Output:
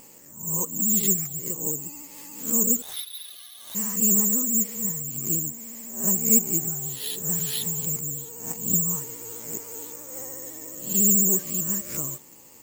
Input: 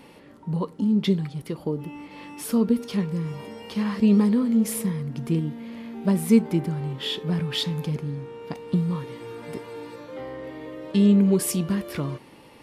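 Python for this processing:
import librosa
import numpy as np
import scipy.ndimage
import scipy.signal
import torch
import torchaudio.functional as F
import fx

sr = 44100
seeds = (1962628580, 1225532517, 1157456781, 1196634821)

p1 = fx.spec_swells(x, sr, rise_s=0.51)
p2 = p1 + fx.echo_wet_highpass(p1, sr, ms=1143, feedback_pct=72, hz=2800.0, wet_db=-21.5, dry=0)
p3 = fx.freq_invert(p2, sr, carrier_hz=4000, at=(2.82, 3.75))
p4 = fx.rider(p3, sr, range_db=5, speed_s=2.0)
p5 = p3 + F.gain(torch.from_numpy(p4), 0.0).numpy()
p6 = (np.kron(scipy.signal.resample_poly(p5, 1, 6), np.eye(6)[0]) * 6)[:len(p5)]
p7 = fx.vibrato(p6, sr, rate_hz=14.0, depth_cents=76.0)
y = F.gain(torch.from_numpy(p7), -16.5).numpy()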